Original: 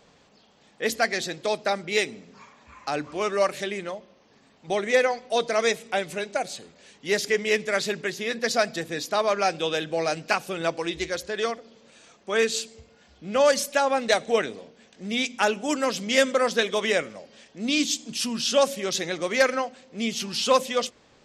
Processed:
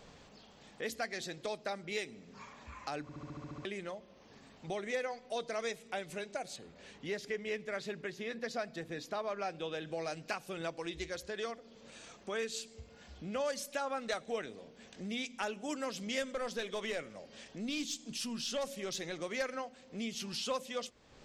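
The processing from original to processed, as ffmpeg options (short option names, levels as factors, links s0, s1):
-filter_complex "[0:a]asettb=1/sr,asplit=3[s0][s1][s2];[s0]atrim=end=6.564[s3];[s1]atrim=start=6.56:end=9.85,asetpts=PTS-STARTPTS,afade=t=in:d=0.004:c=qsin,afade=t=out:st=3.286:d=0.004:c=qsin,highshelf=f=4900:g=-11.5[s4];[s2]atrim=start=9.846[s5];[s3][s4]acrossfade=d=0.004:c1=hsin:c2=qsin[s6];[s6][s5]acrossfade=d=0.004:c1=qsin:c2=hsin,asettb=1/sr,asplit=3[s7][s8][s9];[s7]atrim=end=13.814[s10];[s8]atrim=start=13.81:end=14.21,asetpts=PTS-STARTPTS,afade=t=in:d=0.004:c=qsin,afade=t=out:st=0.396:d=0.004:c=qsin,equalizer=f=1300:w=5.4:g=9.5[s11];[s9]atrim=start=14.206[s12];[s10][s11]acrossfade=d=0.004:c1=hsin:c2=qsin[s13];[s13][s12]acrossfade=d=0.004:c1=qsin:c2=hsin,asettb=1/sr,asplit=3[s14][s15][s16];[s14]atrim=end=16.224[s17];[s15]atrim=start=16.22:end=19.19,asetpts=PTS-STARTPTS,afade=t=in:d=0.004:c=qsin,afade=t=out:st=2.966:d=0.004:c=qsin,aeval=exprs='(tanh(5.62*val(0)+0.05)-tanh(0.05))/5.62':c=same[s18];[s16]atrim=start=19.186[s19];[s17][s18]acrossfade=d=0.004:c1=hsin:c2=qsin[s20];[s20][s19]acrossfade=d=0.004:c1=qsin:c2=hsin,asplit=10[s21][s22][s23][s24][s25][s26][s27][s28][s29][s30];[s21]atrim=end=3.092[s31];[s22]atrim=start=3.018:end=3.092[s32];[s23]atrim=start=3.018:end=3.092[s33];[s24]atrim=start=3.018:end=3.092[s34];[s25]atrim=start=3.018:end=3.092[s35];[s26]atrim=start=3.018:end=3.092[s36];[s27]atrim=start=3.018:end=3.092[s37];[s28]atrim=start=3.018:end=3.092[s38];[s29]atrim=start=3.018:end=3.092[s39];[s30]atrim=start=3.648[s40];[s31][s32]acrossfade=d=0.004:c1=hsin:c2=hsin[s41];[s41][s33]acrossfade=d=0.004:c1=hsin:c2=hsin[s42];[s42][s34]acrossfade=d=0.004:c1=hsin:c2=hsin[s43];[s43][s35]acrossfade=d=0.004:c1=hsin:c2=hsin[s44];[s44][s36]acrossfade=d=0.004:c1=hsin:c2=hsin[s45];[s45][s37]acrossfade=d=0.004:c1=hsin:c2=hsin[s46];[s46][s38]acrossfade=d=0.004:c1=hsin:c2=hsin[s47];[s47][s39]acrossfade=d=0.004:c1=hsin:c2=hsin[s48];[s48][s40]acrossfade=d=0.004:c1=hsin:c2=hsin,lowshelf=f=76:g=11.5,acompressor=threshold=0.00447:ratio=2"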